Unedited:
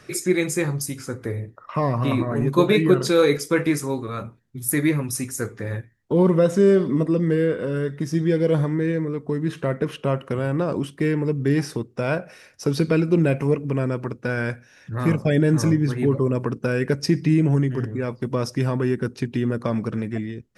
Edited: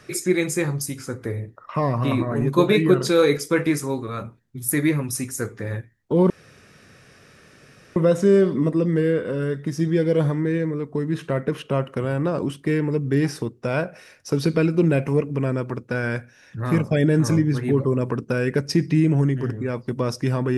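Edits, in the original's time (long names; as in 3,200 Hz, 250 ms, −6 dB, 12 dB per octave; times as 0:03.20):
0:06.30: splice in room tone 1.66 s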